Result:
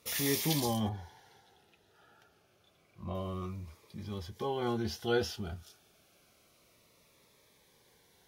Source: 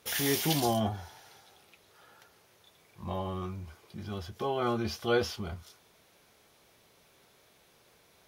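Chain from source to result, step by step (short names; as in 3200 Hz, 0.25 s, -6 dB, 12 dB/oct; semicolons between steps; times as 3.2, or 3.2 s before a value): 0.89–3.15 high shelf 4000 Hz -10.5 dB; cascading phaser falling 0.29 Hz; gain -1.5 dB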